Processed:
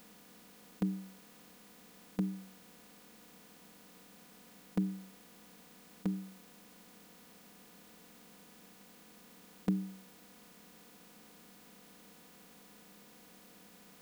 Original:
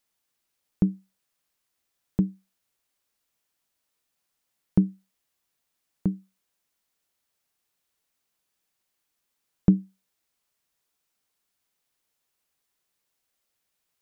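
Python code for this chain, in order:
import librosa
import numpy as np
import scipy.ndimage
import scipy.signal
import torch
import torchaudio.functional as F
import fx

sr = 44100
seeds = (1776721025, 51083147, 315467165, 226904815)

y = fx.bin_compress(x, sr, power=0.4)
y = fx.tilt_eq(y, sr, slope=4.5)
y = y + 0.82 * np.pad(y, (int(4.1 * sr / 1000.0), 0))[:len(y)]
y = y * 10.0 ** (-7.0 / 20.0)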